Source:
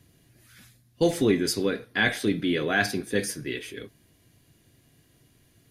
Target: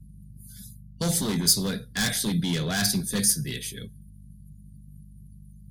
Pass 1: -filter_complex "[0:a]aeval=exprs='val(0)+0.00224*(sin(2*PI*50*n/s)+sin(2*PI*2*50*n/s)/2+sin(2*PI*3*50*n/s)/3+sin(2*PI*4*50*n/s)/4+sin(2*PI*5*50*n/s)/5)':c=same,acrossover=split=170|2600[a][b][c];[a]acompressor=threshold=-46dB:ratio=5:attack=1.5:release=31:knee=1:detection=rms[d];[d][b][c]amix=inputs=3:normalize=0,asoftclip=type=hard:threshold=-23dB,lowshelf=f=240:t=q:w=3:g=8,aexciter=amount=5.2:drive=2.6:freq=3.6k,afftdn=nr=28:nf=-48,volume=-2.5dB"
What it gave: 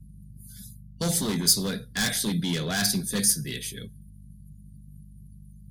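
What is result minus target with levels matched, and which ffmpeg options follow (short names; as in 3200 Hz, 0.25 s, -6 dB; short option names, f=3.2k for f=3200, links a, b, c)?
compressor: peak gain reduction +6 dB
-filter_complex "[0:a]aeval=exprs='val(0)+0.00224*(sin(2*PI*50*n/s)+sin(2*PI*2*50*n/s)/2+sin(2*PI*3*50*n/s)/3+sin(2*PI*4*50*n/s)/4+sin(2*PI*5*50*n/s)/5)':c=same,acrossover=split=170|2600[a][b][c];[a]acompressor=threshold=-38.5dB:ratio=5:attack=1.5:release=31:knee=1:detection=rms[d];[d][b][c]amix=inputs=3:normalize=0,asoftclip=type=hard:threshold=-23dB,lowshelf=f=240:t=q:w=3:g=8,aexciter=amount=5.2:drive=2.6:freq=3.6k,afftdn=nr=28:nf=-48,volume=-2.5dB"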